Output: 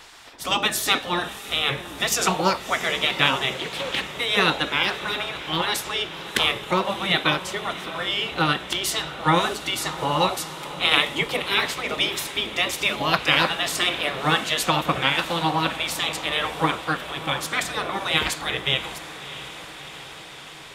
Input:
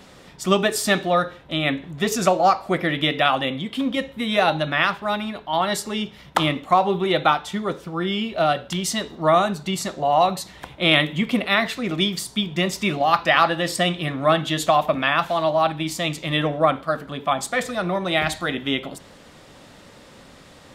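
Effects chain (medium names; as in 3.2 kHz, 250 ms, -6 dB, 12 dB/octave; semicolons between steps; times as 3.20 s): spectral gate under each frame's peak -10 dB weak; echo that smears into a reverb 658 ms, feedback 71%, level -14 dB; 3.54–4.05 s: loudspeaker Doppler distortion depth 0.26 ms; trim +5 dB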